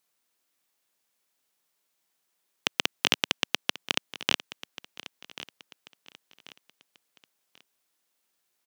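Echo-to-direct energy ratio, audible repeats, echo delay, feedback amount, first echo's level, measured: -15.5 dB, 3, 1088 ms, 35%, -16.0 dB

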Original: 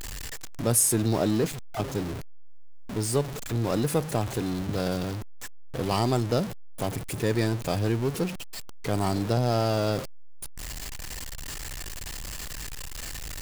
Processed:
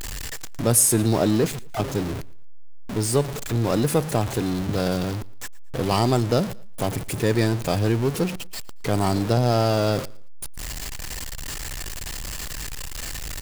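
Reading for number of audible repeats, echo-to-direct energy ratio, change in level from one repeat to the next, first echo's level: 2, -22.5 dB, -10.0 dB, -23.0 dB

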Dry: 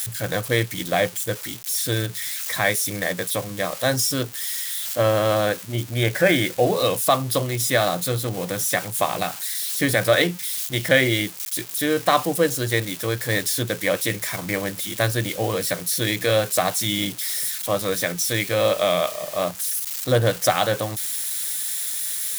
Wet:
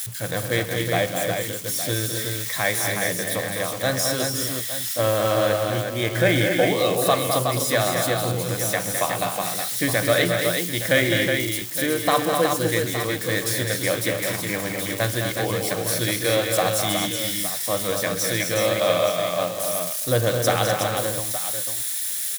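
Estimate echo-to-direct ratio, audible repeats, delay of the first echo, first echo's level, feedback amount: -1.0 dB, 6, 57 ms, -18.0 dB, no regular repeats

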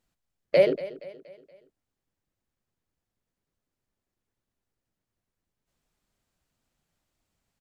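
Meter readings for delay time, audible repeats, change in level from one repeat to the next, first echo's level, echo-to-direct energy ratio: 236 ms, 3, -7.0 dB, -16.5 dB, -15.5 dB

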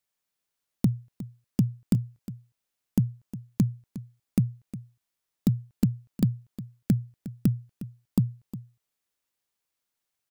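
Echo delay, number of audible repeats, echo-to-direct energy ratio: 359 ms, 1, -15.0 dB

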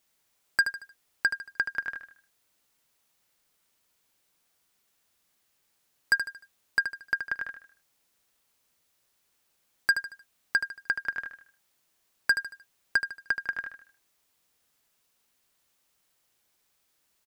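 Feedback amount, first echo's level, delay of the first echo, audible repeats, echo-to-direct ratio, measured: 38%, -9.0 dB, 76 ms, 4, -8.5 dB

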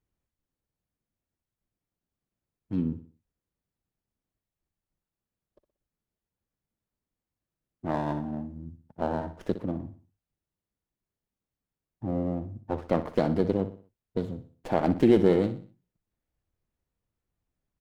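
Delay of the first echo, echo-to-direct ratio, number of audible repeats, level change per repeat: 61 ms, -11.5 dB, 3, -8.0 dB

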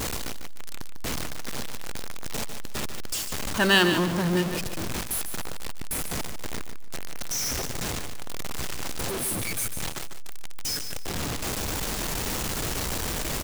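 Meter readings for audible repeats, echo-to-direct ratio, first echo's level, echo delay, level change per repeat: 3, -8.5 dB, -9.0 dB, 148 ms, -12.5 dB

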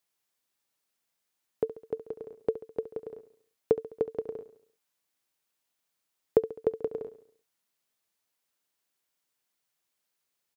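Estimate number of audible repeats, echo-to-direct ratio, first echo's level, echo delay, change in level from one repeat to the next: 4, -12.5 dB, -14.0 dB, 69 ms, -6.0 dB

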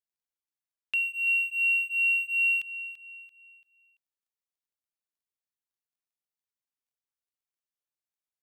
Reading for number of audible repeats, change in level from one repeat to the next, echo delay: 3, -8.5 dB, 338 ms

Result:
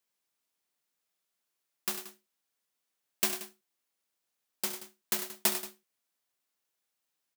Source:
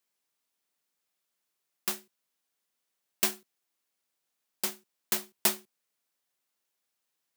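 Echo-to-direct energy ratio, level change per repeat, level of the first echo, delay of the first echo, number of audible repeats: -7.5 dB, no regular repeats, -12.0 dB, 68 ms, 3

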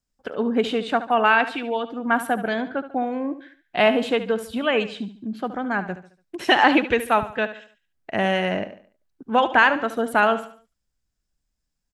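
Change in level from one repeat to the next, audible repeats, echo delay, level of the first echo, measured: -8.0 dB, 3, 72 ms, -13.0 dB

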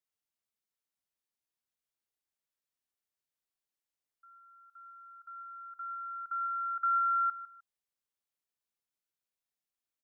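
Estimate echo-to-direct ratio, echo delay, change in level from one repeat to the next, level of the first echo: -14.5 dB, 153 ms, -13.0 dB, -14.5 dB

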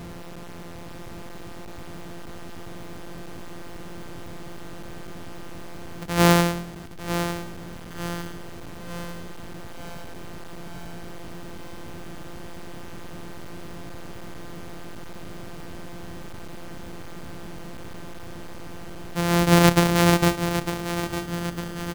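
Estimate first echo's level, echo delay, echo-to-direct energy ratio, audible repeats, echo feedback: -9.5 dB, 903 ms, -8.0 dB, 5, 55%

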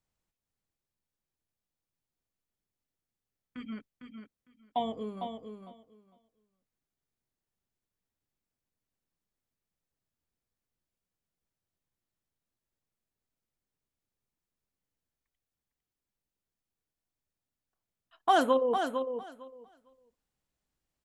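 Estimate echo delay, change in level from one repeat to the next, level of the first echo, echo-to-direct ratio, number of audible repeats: 454 ms, -16.0 dB, -7.0 dB, -7.0 dB, 2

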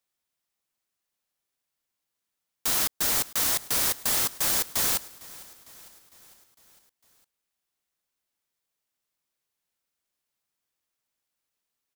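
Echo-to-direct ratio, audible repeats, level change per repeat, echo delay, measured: -18.5 dB, 4, -4.5 dB, 454 ms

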